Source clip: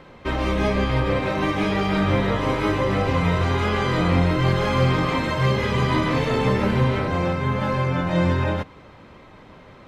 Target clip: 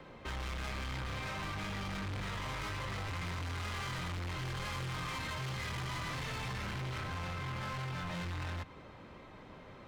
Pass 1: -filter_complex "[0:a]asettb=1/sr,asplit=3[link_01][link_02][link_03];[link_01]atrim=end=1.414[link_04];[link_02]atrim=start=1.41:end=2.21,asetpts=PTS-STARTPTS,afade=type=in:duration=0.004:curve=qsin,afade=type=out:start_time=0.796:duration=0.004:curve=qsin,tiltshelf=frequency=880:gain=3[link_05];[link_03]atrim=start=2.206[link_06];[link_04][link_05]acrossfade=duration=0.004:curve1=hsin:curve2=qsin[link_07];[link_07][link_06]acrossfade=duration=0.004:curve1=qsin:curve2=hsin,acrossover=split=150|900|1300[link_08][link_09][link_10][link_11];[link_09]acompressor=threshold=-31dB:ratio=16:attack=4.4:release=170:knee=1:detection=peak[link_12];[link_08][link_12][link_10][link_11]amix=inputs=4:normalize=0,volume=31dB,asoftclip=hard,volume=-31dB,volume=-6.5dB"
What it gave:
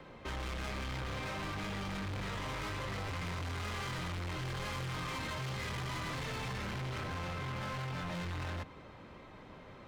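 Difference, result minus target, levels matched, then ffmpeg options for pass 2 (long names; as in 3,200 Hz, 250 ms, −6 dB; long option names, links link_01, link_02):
downward compressor: peak gain reduction −6.5 dB
-filter_complex "[0:a]asettb=1/sr,asplit=3[link_01][link_02][link_03];[link_01]atrim=end=1.414[link_04];[link_02]atrim=start=1.41:end=2.21,asetpts=PTS-STARTPTS,afade=type=in:duration=0.004:curve=qsin,afade=type=out:start_time=0.796:duration=0.004:curve=qsin,tiltshelf=frequency=880:gain=3[link_05];[link_03]atrim=start=2.206[link_06];[link_04][link_05]acrossfade=duration=0.004:curve1=hsin:curve2=qsin[link_07];[link_07][link_06]acrossfade=duration=0.004:curve1=qsin:curve2=hsin,acrossover=split=150|900|1300[link_08][link_09][link_10][link_11];[link_09]acompressor=threshold=-38dB:ratio=16:attack=4.4:release=170:knee=1:detection=peak[link_12];[link_08][link_12][link_10][link_11]amix=inputs=4:normalize=0,volume=31dB,asoftclip=hard,volume=-31dB,volume=-6.5dB"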